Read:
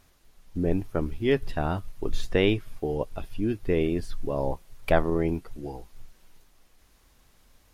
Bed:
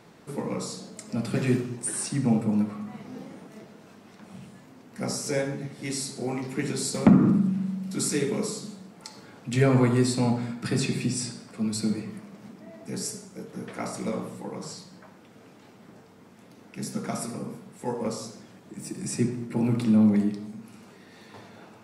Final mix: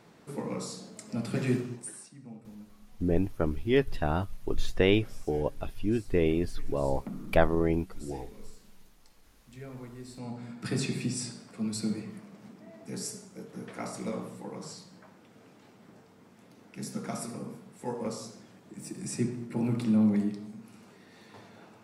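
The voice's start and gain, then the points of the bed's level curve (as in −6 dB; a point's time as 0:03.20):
2.45 s, −1.0 dB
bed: 0:01.73 −4 dB
0:02.14 −23.5 dB
0:09.99 −23.5 dB
0:10.67 −4.5 dB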